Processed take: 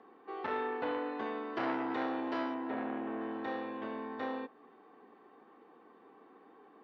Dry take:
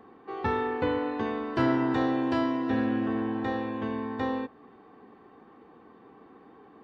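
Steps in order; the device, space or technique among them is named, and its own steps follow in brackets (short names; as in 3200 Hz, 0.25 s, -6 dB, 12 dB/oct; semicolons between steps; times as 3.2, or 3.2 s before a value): 2.54–3.21 air absorption 250 m; public-address speaker with an overloaded transformer (core saturation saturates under 1000 Hz; BPF 290–5000 Hz); gain -4.5 dB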